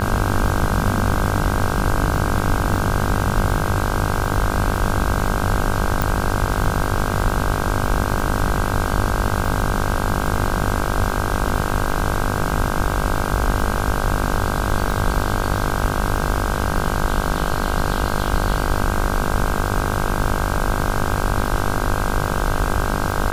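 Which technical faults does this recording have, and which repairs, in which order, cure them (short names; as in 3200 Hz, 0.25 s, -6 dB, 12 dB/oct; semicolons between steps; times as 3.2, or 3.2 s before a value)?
buzz 50 Hz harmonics 32 -24 dBFS
crackle 42/s -27 dBFS
6.02 pop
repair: de-click; de-hum 50 Hz, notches 32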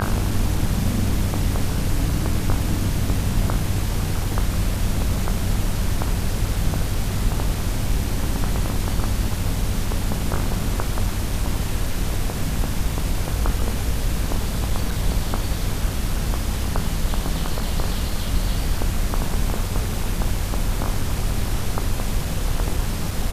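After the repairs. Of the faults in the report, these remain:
6.02 pop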